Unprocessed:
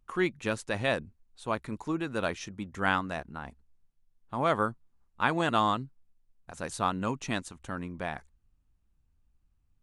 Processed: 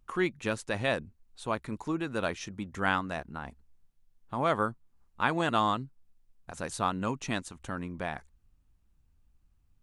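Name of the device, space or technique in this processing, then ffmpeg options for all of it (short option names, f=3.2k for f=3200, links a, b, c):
parallel compression: -filter_complex "[0:a]asplit=2[a][b];[b]acompressor=threshold=-44dB:ratio=6,volume=-2.5dB[c];[a][c]amix=inputs=2:normalize=0,volume=-1.5dB"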